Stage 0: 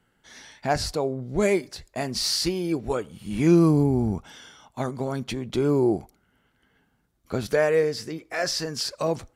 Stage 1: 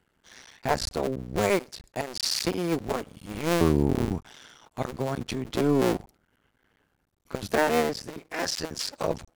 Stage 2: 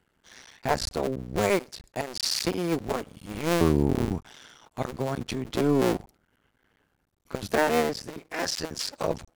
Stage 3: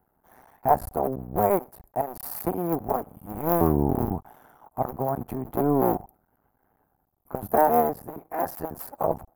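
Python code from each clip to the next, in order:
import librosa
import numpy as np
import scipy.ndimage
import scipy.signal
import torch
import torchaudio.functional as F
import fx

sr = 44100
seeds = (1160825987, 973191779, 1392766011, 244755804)

y1 = fx.cycle_switch(x, sr, every=2, mode='muted')
y2 = y1
y3 = fx.curve_eq(y2, sr, hz=(530.0, 760.0, 3500.0, 5600.0, 8400.0, 13000.0), db=(0, 10, -26, -25, -12, 12))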